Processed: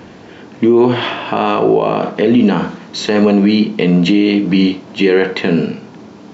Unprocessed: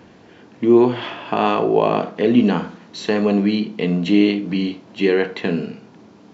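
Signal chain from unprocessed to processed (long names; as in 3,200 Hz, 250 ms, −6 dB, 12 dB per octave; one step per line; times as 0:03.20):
boost into a limiter +12 dB
level −2 dB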